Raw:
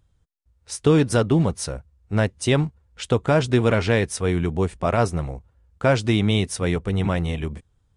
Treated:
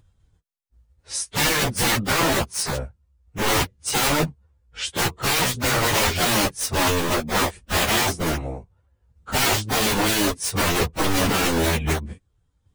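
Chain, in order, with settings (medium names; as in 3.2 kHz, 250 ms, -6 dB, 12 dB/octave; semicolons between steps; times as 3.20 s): integer overflow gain 19 dB; transient shaper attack 0 dB, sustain -7 dB; plain phase-vocoder stretch 1.6×; trim +7 dB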